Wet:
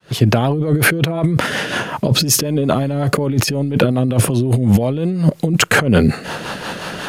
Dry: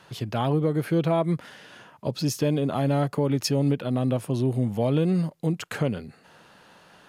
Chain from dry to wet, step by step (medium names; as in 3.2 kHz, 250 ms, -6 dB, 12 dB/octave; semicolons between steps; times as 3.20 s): fade-in on the opening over 0.58 s; compressor with a negative ratio -34 dBFS, ratio -1; rotary cabinet horn 5.5 Hz; overload inside the chain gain 18.5 dB; dynamic bell 4.2 kHz, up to -4 dB, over -48 dBFS, Q 1.1; loudness maximiser +22 dB; trim -1 dB